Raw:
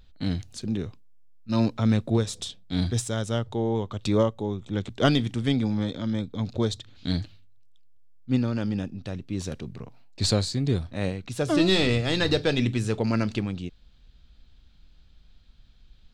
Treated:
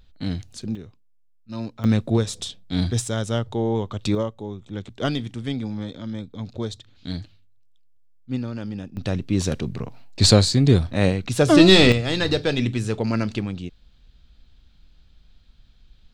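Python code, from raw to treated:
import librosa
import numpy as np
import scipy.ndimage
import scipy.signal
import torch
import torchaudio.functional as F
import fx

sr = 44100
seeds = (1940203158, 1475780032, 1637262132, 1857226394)

y = fx.gain(x, sr, db=fx.steps((0.0, 0.5), (0.75, -8.0), (1.84, 3.0), (4.15, -3.5), (8.97, 9.0), (11.92, 1.5)))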